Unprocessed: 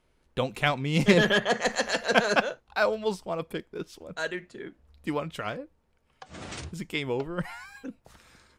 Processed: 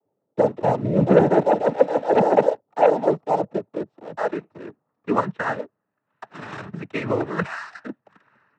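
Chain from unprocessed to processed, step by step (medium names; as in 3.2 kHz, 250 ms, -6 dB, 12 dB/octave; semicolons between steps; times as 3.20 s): low-pass sweep 580 Hz -> 1.4 kHz, 2.79–5.95 s; waveshaping leveller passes 2; noise-vocoded speech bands 12; trim -1.5 dB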